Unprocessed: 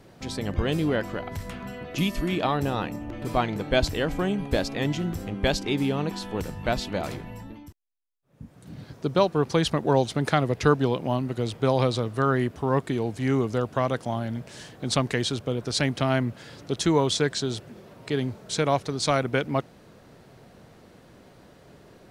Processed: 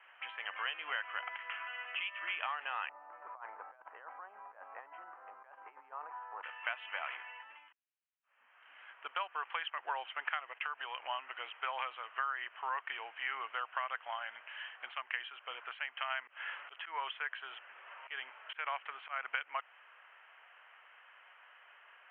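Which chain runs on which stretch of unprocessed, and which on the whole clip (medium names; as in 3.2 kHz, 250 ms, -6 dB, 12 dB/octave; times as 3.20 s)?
2.89–6.43 s: bass shelf 430 Hz -5 dB + compressor with a negative ratio -31 dBFS, ratio -0.5 + low-pass 1.1 kHz 24 dB/octave
10.52–11.00 s: gate -39 dBFS, range -13 dB + high-pass 260 Hz + compression 4:1, threshold -26 dBFS
16.27–19.26 s: slow attack 213 ms + distance through air 110 m + three bands compressed up and down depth 40%
whole clip: high-pass 1.1 kHz 24 dB/octave; compression 6:1, threshold -36 dBFS; Chebyshev low-pass 3.1 kHz, order 8; trim +3.5 dB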